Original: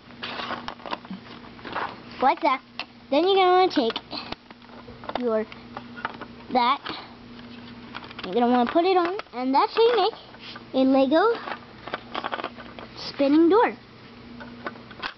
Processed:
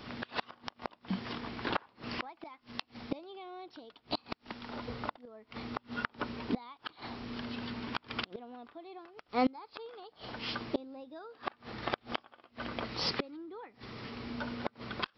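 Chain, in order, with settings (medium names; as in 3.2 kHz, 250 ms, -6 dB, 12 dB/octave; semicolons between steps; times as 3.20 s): inverted gate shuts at -20 dBFS, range -30 dB; trim +1.5 dB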